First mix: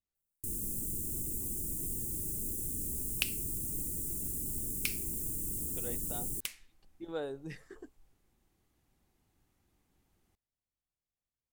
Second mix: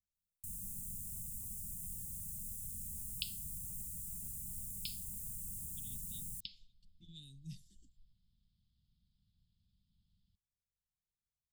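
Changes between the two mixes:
first sound -7.0 dB; second sound: add brick-wall FIR low-pass 5.3 kHz; master: add Chebyshev band-stop 200–3300 Hz, order 4

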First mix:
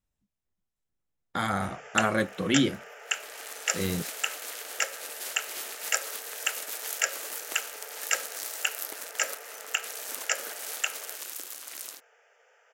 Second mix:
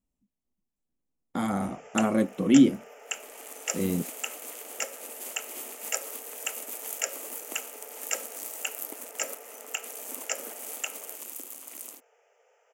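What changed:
second sound: add peaking EQ 5.4 kHz -6 dB 0.34 oct; master: add fifteen-band graphic EQ 100 Hz -7 dB, 250 Hz +10 dB, 1.6 kHz -11 dB, 4 kHz -11 dB

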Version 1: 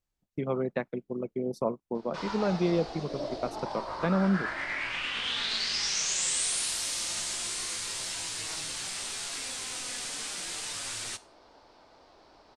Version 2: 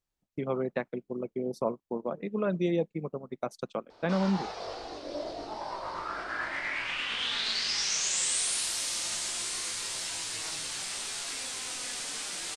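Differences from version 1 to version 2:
background: entry +1.95 s; master: add bass shelf 180 Hz -4.5 dB

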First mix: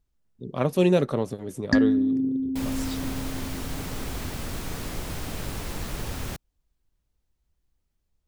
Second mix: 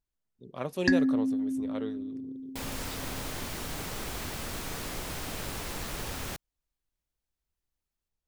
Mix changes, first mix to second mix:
speech -7.5 dB; first sound: entry -0.85 s; master: add bass shelf 330 Hz -7.5 dB

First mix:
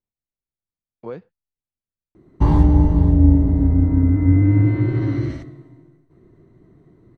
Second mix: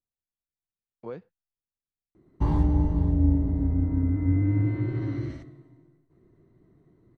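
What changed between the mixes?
speech -5.5 dB; background -9.0 dB

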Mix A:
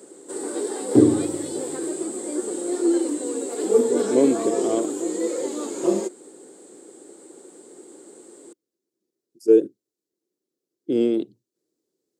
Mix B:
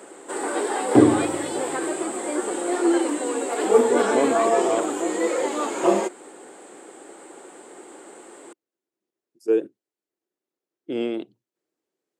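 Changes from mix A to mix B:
speech -6.5 dB; master: add high-order bell 1.4 kHz +12.5 dB 2.6 oct

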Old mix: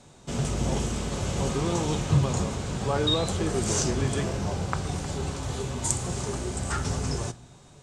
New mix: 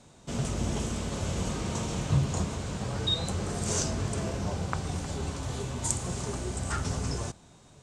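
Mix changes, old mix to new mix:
speech -10.5 dB; reverb: off

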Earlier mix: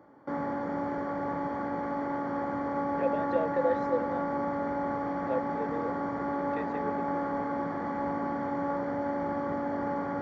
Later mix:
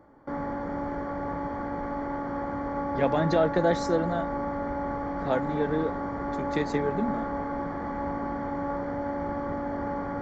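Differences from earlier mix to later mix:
speech: remove vowel filter e; background: remove high-pass 130 Hz 12 dB/octave

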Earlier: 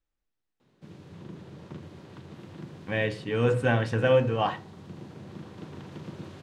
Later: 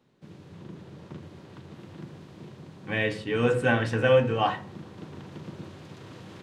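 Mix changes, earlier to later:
speech: send +8.0 dB; background: entry -0.60 s

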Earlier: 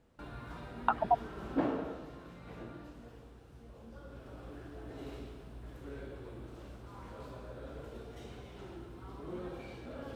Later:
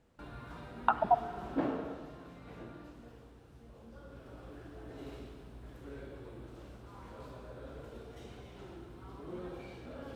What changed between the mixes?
background -3.0 dB; reverb: on, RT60 2.3 s

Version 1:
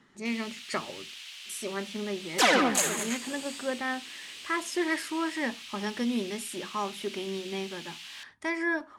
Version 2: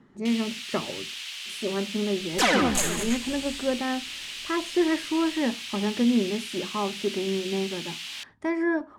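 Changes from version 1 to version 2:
speech: add tilt shelf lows +8.5 dB, about 1.2 kHz; first sound +7.5 dB; second sound: remove high-pass 250 Hz 12 dB/octave

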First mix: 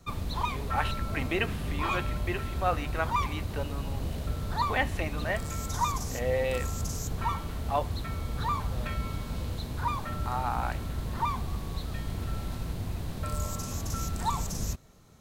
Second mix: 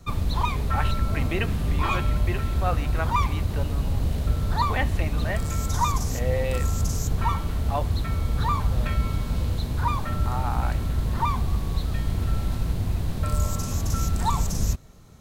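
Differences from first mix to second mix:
background +4.0 dB; master: add bass shelf 140 Hz +6.5 dB

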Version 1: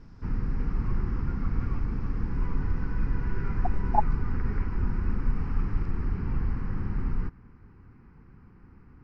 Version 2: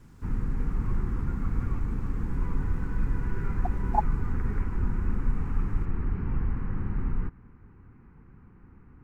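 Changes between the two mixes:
speech: add tilt EQ +4.5 dB/octave; master: remove resonant low-pass 5.2 kHz, resonance Q 5.8

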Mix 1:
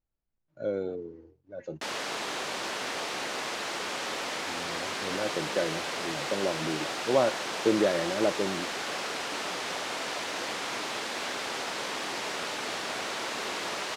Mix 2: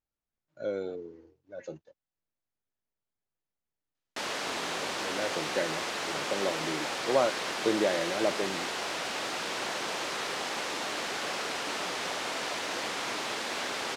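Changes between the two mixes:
speech: add tilt EQ +2 dB/octave; background: entry +2.35 s

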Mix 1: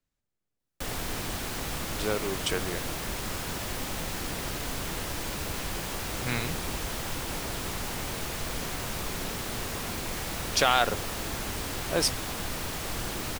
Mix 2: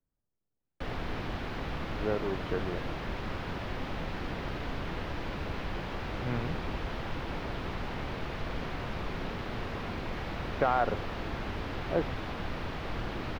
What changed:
speech: add low-pass 1.2 kHz; master: add distance through air 320 m

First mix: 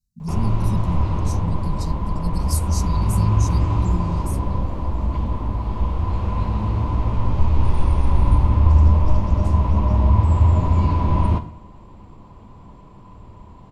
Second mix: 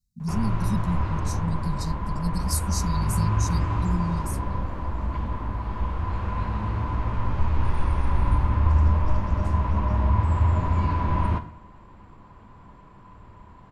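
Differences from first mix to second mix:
background -6.0 dB; master: add peaking EQ 1.6 kHz +12 dB 0.94 oct

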